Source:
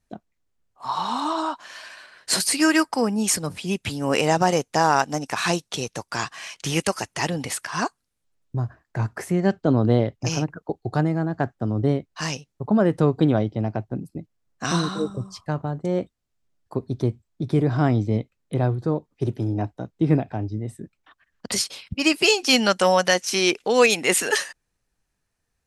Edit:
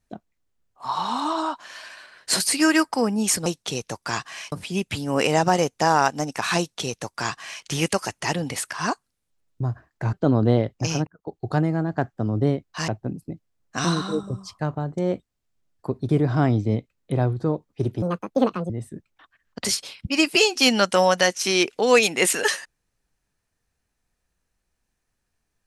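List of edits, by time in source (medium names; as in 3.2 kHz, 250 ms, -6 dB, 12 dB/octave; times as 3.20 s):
5.52–6.58 s: copy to 3.46 s
9.07–9.55 s: delete
10.49–10.92 s: fade in
12.30–13.75 s: delete
16.96–17.51 s: delete
19.44–20.57 s: speed 167%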